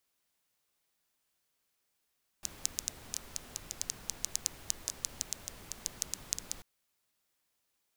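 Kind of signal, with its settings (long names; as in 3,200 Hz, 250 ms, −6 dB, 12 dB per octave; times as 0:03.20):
rain-like ticks over hiss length 4.19 s, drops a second 6.9, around 6,400 Hz, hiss −9.5 dB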